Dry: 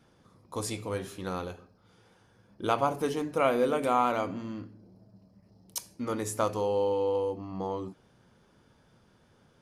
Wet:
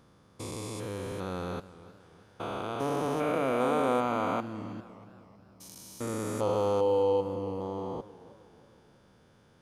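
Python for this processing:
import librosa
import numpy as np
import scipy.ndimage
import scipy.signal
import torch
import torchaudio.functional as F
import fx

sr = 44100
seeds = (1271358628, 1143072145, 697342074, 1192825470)

y = fx.spec_steps(x, sr, hold_ms=400)
y = fx.echo_warbled(y, sr, ms=316, feedback_pct=49, rate_hz=2.8, cents=97, wet_db=-17.5)
y = F.gain(torch.from_numpy(y), 2.5).numpy()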